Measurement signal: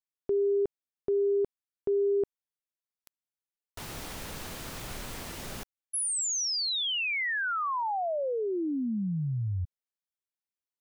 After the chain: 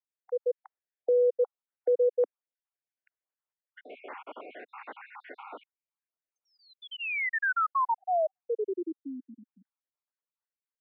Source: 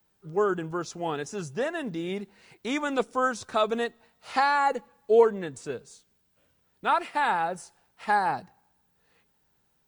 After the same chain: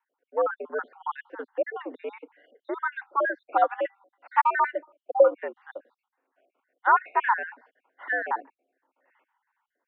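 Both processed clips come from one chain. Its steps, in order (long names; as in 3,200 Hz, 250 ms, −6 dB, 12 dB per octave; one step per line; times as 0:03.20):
time-frequency cells dropped at random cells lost 58%
automatic gain control gain up to 6 dB
single-sideband voice off tune +90 Hz 170–3,000 Hz
three-way crossover with the lows and the highs turned down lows −16 dB, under 390 Hz, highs −20 dB, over 2,100 Hz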